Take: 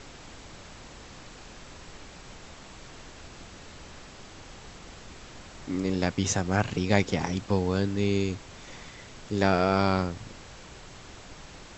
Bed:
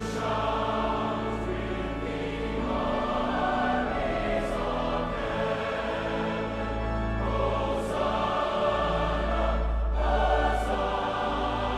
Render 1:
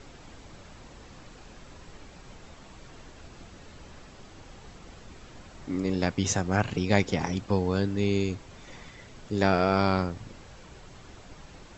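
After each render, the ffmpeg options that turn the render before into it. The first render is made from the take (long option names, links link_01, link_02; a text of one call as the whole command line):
ffmpeg -i in.wav -af "afftdn=noise_reduction=6:noise_floor=-47" out.wav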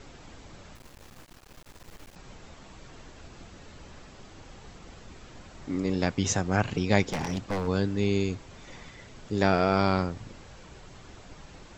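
ffmpeg -i in.wav -filter_complex "[0:a]asettb=1/sr,asplit=3[link_01][link_02][link_03];[link_01]atrim=end=0.754[link_04];[link_02]atrim=start=0.75:end=2.16,asetpts=PTS-STARTPTS,afade=type=in:duration=0.004:curve=qsin,afade=type=out:start_time=1.406:duration=0.004:curve=qsin,acrusher=bits=6:dc=4:mix=0:aa=0.000001[link_05];[link_03]atrim=start=2.156[link_06];[link_04][link_05]acrossfade=duration=0.004:curve1=hsin:curve2=qsin[link_07];[link_07][link_06]acrossfade=duration=0.004:curve1=qsin:curve2=hsin,asplit=3[link_08][link_09][link_10];[link_08]afade=type=out:start_time=7.11:duration=0.02[link_11];[link_09]aeval=exprs='0.0708*(abs(mod(val(0)/0.0708+3,4)-2)-1)':channel_layout=same,afade=type=in:start_time=7.11:duration=0.02,afade=type=out:start_time=7.66:duration=0.02[link_12];[link_10]afade=type=in:start_time=7.66:duration=0.02[link_13];[link_11][link_12][link_13]amix=inputs=3:normalize=0" out.wav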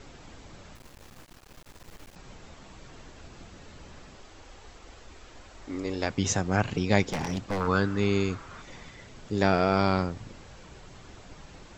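ffmpeg -i in.wav -filter_complex "[0:a]asettb=1/sr,asplit=3[link_01][link_02][link_03];[link_01]atrim=end=4.184[link_04];[link_02]atrim=start=4.18:end=6.1,asetpts=PTS-STARTPTS,afade=type=in:duration=0.004:curve=qsin,afade=type=out:start_time=1.916:duration=0.004:curve=qsin,equalizer=frequency=160:width_type=o:width=0.98:gain=-13.5[link_05];[link_03]atrim=start=6.096[link_06];[link_04][link_05]acrossfade=duration=0.004:curve1=hsin:curve2=qsin[link_07];[link_07][link_06]acrossfade=duration=0.004:curve1=qsin:curve2=hsin,asettb=1/sr,asplit=3[link_08][link_09][link_10];[link_08]atrim=end=7.604[link_11];[link_09]atrim=start=7.6:end=8.62,asetpts=PTS-STARTPTS,afade=type=in:duration=0.004:curve=qsin,afade=type=out:start_time=1.016:duration=0.004:curve=qsin,equalizer=frequency=1300:width_type=o:width=0.77:gain=14.5[link_12];[link_10]atrim=start=8.616[link_13];[link_11][link_12]acrossfade=duration=0.004:curve1=hsin:curve2=qsin[link_14];[link_14][link_13]acrossfade=duration=0.004:curve1=qsin:curve2=hsin" out.wav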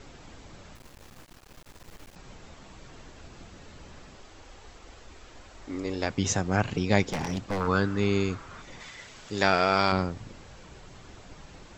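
ffmpeg -i in.wav -filter_complex "[0:a]asettb=1/sr,asplit=3[link_01][link_02][link_03];[link_01]atrim=end=8.804[link_04];[link_02]atrim=start=8.8:end=9.92,asetpts=PTS-STARTPTS,afade=type=in:duration=0.004:curve=qsin,afade=type=out:start_time=1.116:duration=0.004:curve=qsin,tiltshelf=frequency=630:gain=-6.5[link_05];[link_03]atrim=start=9.916[link_06];[link_04][link_05]acrossfade=duration=0.004:curve1=hsin:curve2=qsin[link_07];[link_07][link_06]acrossfade=duration=0.004:curve1=qsin:curve2=hsin" out.wav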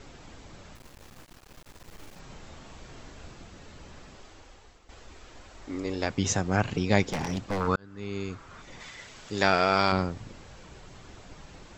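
ffmpeg -i in.wav -filter_complex "[0:a]asettb=1/sr,asplit=3[link_01][link_02][link_03];[link_01]atrim=end=1.944[link_04];[link_02]atrim=start=1.94:end=3.34,asetpts=PTS-STARTPTS,afade=type=in:duration=0.004:curve=qsin,afade=type=out:start_time=1.396:duration=0.004:curve=qsin,asplit=2[link_05][link_06];[link_06]adelay=39,volume=-4dB[link_07];[link_05][link_07]amix=inputs=2:normalize=0,atrim=end_sample=61740[link_08];[link_03]atrim=start=3.336[link_09];[link_04][link_08]acrossfade=duration=0.004:curve1=hsin:curve2=qsin[link_10];[link_10][link_09]acrossfade=duration=0.004:curve1=qsin:curve2=hsin,asplit=3[link_11][link_12][link_13];[link_11]atrim=end=4.89,asetpts=PTS-STARTPTS,afade=type=out:start_time=4.27:duration=0.62:silence=0.266073[link_14];[link_12]atrim=start=4.89:end=7.76,asetpts=PTS-STARTPTS,afade=type=in:duration=0.004:curve=hsin:silence=0.266073,afade=type=out:start_time=2.866:duration=0.004:curve=hsin[link_15];[link_13]atrim=start=7.76,asetpts=PTS-STARTPTS,afade=type=in:duration=1.09[link_16];[link_14][link_15][link_16]concat=n=3:v=0:a=1" out.wav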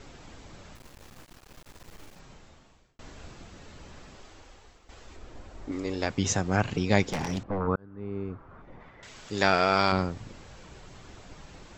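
ffmpeg -i in.wav -filter_complex "[0:a]asettb=1/sr,asplit=3[link_01][link_02][link_03];[link_01]atrim=end=5.164[link_04];[link_02]atrim=start=5.16:end=5.72,asetpts=PTS-STARTPTS,afade=type=in:duration=0.004:curve=qsin,afade=type=out:start_time=0.556:duration=0.004:curve=qsin,tiltshelf=frequency=920:gain=5.5[link_05];[link_03]atrim=start=5.716[link_06];[link_04][link_05]acrossfade=duration=0.004:curve1=hsin:curve2=qsin[link_07];[link_07][link_06]acrossfade=duration=0.004:curve1=qsin:curve2=hsin,asettb=1/sr,asplit=3[link_08][link_09][link_10];[link_08]atrim=end=7.434[link_11];[link_09]atrim=start=7.43:end=9.03,asetpts=PTS-STARTPTS,afade=type=in:duration=0.004:curve=qsin,afade=type=out:start_time=1.596:duration=0.004:curve=qsin,lowpass=1100[link_12];[link_10]atrim=start=9.026[link_13];[link_11][link_12]acrossfade=duration=0.004:curve1=hsin:curve2=qsin[link_14];[link_14][link_13]acrossfade=duration=0.004:curve1=qsin:curve2=hsin,asplit=2[link_15][link_16];[link_15]atrim=end=2.99,asetpts=PTS-STARTPTS,afade=type=out:start_time=1.83:duration=1.16[link_17];[link_16]atrim=start=2.99,asetpts=PTS-STARTPTS,afade=type=in:duration=0.004:curve=hsin[link_18];[link_17][link_18]concat=n=2:v=0:a=1" out.wav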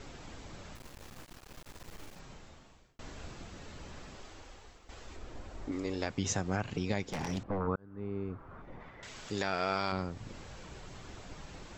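ffmpeg -i in.wav -af "alimiter=limit=-12dB:level=0:latency=1:release=455,acompressor=threshold=-38dB:ratio=1.5" out.wav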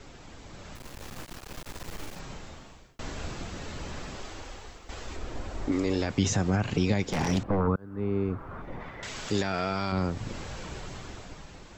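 ffmpeg -i in.wav -filter_complex "[0:a]acrossover=split=260[link_01][link_02];[link_02]alimiter=level_in=6.5dB:limit=-24dB:level=0:latency=1:release=13,volume=-6.5dB[link_03];[link_01][link_03]amix=inputs=2:normalize=0,dynaudnorm=framelen=130:gausssize=13:maxgain=9.5dB" out.wav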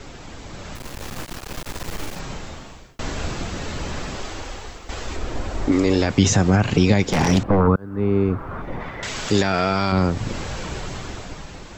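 ffmpeg -i in.wav -af "volume=9.5dB" out.wav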